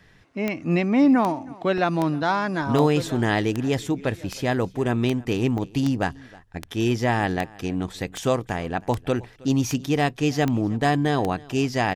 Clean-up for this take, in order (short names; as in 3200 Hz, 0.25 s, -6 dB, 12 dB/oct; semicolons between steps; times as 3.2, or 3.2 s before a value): de-click; interpolate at 1.78/5.58, 1.3 ms; inverse comb 0.317 s -23 dB